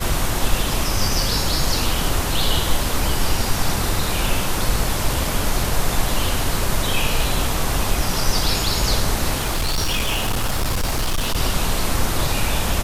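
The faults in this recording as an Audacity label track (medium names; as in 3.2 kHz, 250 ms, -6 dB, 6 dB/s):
9.400000	11.370000	clipped -16.5 dBFS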